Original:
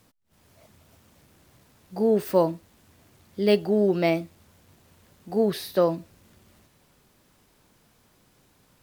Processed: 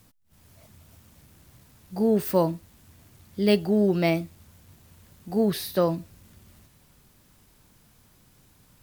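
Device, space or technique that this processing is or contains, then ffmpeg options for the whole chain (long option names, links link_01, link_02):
smiley-face EQ: -af "lowshelf=frequency=180:gain=8,equalizer=frequency=460:width_type=o:width=1.5:gain=-3.5,highshelf=frequency=7600:gain=6.5"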